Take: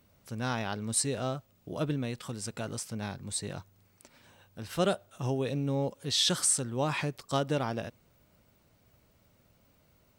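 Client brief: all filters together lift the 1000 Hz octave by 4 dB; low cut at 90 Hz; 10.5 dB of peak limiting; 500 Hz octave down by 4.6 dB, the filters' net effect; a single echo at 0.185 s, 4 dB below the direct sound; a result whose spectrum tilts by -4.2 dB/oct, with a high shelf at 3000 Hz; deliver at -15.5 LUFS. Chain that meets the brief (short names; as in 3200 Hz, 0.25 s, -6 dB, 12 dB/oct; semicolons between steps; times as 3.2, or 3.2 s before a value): HPF 90 Hz; bell 500 Hz -8.5 dB; bell 1000 Hz +9 dB; high shelf 3000 Hz -5.5 dB; limiter -25.5 dBFS; echo 0.185 s -4 dB; gain +20.5 dB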